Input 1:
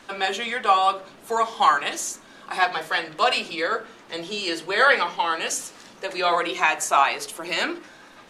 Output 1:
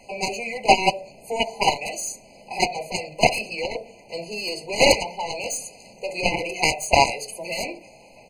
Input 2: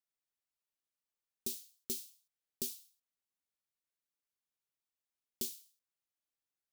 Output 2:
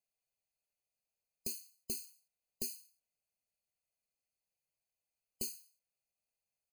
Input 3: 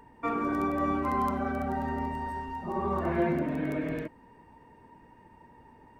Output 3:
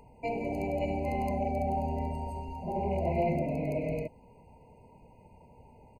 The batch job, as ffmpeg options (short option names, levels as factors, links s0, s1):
-af "aecho=1:1:1.6:0.61,aeval=exprs='0.794*(cos(1*acos(clip(val(0)/0.794,-1,1)))-cos(1*PI/2))+0.178*(cos(2*acos(clip(val(0)/0.794,-1,1)))-cos(2*PI/2))+0.0501*(cos(4*acos(clip(val(0)/0.794,-1,1)))-cos(4*PI/2))+0.2*(cos(7*acos(clip(val(0)/0.794,-1,1)))-cos(7*PI/2))+0.0112*(cos(8*acos(clip(val(0)/0.794,-1,1)))-cos(8*PI/2))':c=same,afftfilt=real='re*eq(mod(floor(b*sr/1024/1000),2),0)':imag='im*eq(mod(floor(b*sr/1024/1000),2),0)':win_size=1024:overlap=0.75,volume=1.5"